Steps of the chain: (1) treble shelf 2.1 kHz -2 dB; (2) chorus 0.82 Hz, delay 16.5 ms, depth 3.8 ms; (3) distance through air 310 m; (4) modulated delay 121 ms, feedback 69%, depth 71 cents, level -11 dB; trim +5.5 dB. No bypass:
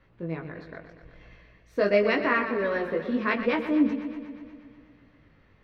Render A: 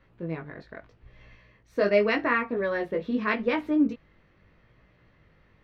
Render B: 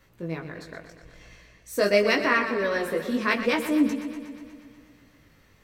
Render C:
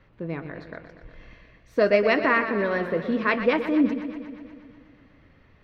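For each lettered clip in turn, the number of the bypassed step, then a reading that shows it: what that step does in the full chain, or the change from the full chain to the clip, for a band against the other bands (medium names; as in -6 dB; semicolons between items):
4, momentary loudness spread change -5 LU; 3, 4 kHz band +7.0 dB; 2, loudness change +2.5 LU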